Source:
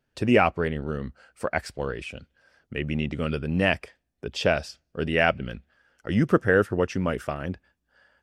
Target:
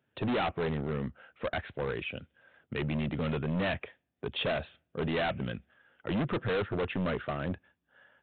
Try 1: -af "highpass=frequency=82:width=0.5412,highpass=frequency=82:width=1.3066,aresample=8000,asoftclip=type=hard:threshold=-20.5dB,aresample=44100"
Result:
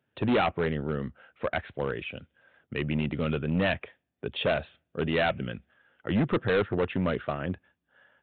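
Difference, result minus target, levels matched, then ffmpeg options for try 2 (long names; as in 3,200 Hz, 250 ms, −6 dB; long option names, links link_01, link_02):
hard clipping: distortion −4 dB
-af "highpass=frequency=82:width=0.5412,highpass=frequency=82:width=1.3066,aresample=8000,asoftclip=type=hard:threshold=-27.5dB,aresample=44100"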